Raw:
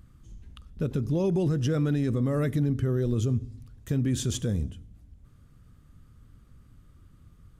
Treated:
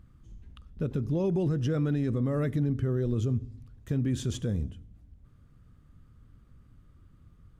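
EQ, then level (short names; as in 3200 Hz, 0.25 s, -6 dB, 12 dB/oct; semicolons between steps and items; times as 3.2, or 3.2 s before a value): high shelf 4500 Hz -9 dB; -2.0 dB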